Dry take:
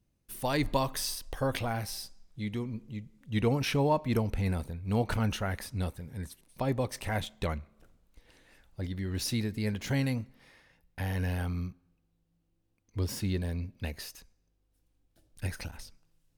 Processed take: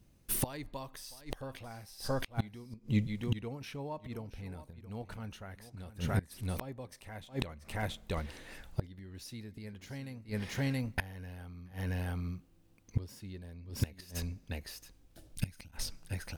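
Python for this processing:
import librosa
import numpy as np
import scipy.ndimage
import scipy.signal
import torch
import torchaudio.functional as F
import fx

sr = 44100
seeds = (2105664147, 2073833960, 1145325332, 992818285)

y = x + 10.0 ** (-14.5 / 20.0) * np.pad(x, (int(676 * sr / 1000.0), 0))[:len(x)]
y = fx.spec_box(y, sr, start_s=15.36, length_s=0.36, low_hz=320.0, high_hz=2000.0, gain_db=-9)
y = fx.gate_flip(y, sr, shuts_db=-29.0, range_db=-25)
y = F.gain(torch.from_numpy(y), 10.5).numpy()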